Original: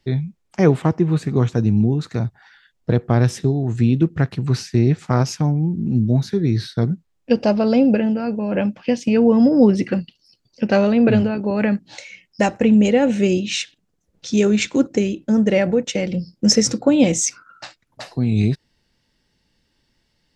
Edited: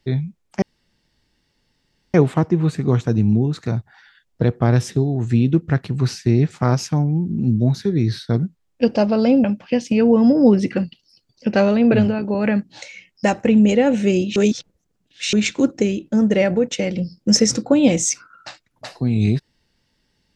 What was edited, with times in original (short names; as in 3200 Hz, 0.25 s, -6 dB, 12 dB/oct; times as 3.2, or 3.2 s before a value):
0.62 insert room tone 1.52 s
7.92–8.6 cut
13.52–14.49 reverse